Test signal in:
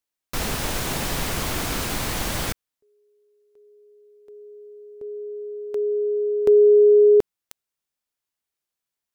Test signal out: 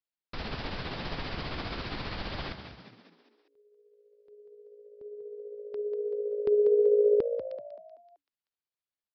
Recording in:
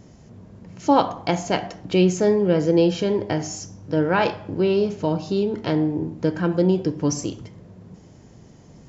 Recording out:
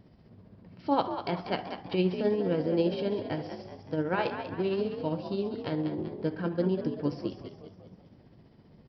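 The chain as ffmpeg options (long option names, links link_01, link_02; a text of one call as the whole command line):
ffmpeg -i in.wav -filter_complex "[0:a]aresample=11025,aresample=44100,asplit=6[link_01][link_02][link_03][link_04][link_05][link_06];[link_02]adelay=191,afreqshift=56,volume=-9dB[link_07];[link_03]adelay=382,afreqshift=112,volume=-15.6dB[link_08];[link_04]adelay=573,afreqshift=168,volume=-22.1dB[link_09];[link_05]adelay=764,afreqshift=224,volume=-28.7dB[link_10];[link_06]adelay=955,afreqshift=280,volume=-35.2dB[link_11];[link_01][link_07][link_08][link_09][link_10][link_11]amix=inputs=6:normalize=0,tremolo=f=15:d=0.4,volume=-8dB" out.wav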